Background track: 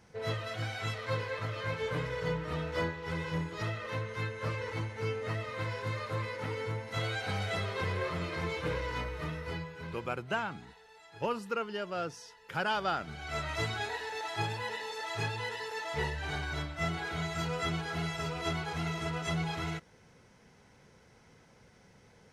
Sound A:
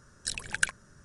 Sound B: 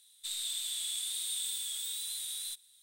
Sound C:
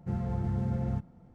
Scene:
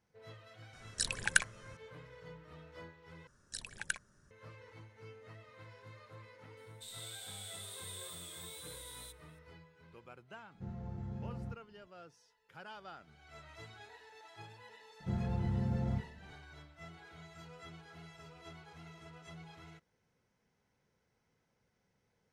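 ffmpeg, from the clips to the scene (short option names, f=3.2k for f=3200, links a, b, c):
-filter_complex "[1:a]asplit=2[a][b];[3:a]asplit=2[c][d];[0:a]volume=-18.5dB[e];[c]aresample=16000,aresample=44100[f];[e]asplit=2[g][h];[g]atrim=end=3.274[i];[b]atrim=end=1.04,asetpts=PTS-STARTPTS,volume=-10.5dB[j];[h]atrim=start=4.306[k];[a]atrim=end=1.04,asetpts=PTS-STARTPTS,volume=-1dB,afade=t=in:d=0.004:c=hsin,afade=t=out:st=1.036:d=0.004:c=hsin,adelay=730[l];[2:a]atrim=end=2.82,asetpts=PTS-STARTPTS,volume=-12dB,afade=t=in:d=0.004:c=hsin,afade=t=out:st=2.816:d=0.004:c=hsin,adelay=6570[m];[f]atrim=end=1.34,asetpts=PTS-STARTPTS,volume=-12dB,afade=t=in:d=0.004:c=hsin,afade=t=out:st=1.336:d=0.004:c=hsin,adelay=10540[n];[d]atrim=end=1.34,asetpts=PTS-STARTPTS,volume=-3.5dB,afade=t=in:d=0.004:c=hsin,afade=t=out:st=1.336:d=0.004:c=hsin,adelay=15000[o];[i][j]acrossfade=d=0.004:c1=hsin:c2=hsin[p];[p][k]acrossfade=d=0.004:c1=hsin:c2=hsin[q];[q][l][m][n][o]amix=inputs=5:normalize=0"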